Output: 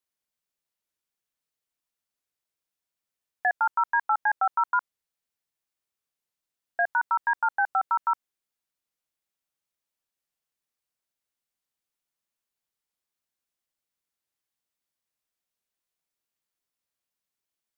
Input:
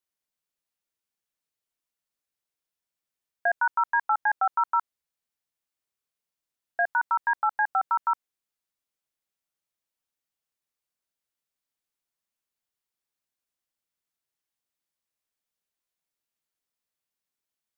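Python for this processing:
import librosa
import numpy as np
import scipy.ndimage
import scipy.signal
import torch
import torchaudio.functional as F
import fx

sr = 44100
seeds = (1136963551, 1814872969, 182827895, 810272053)

y = fx.record_warp(x, sr, rpm=45.0, depth_cents=100.0)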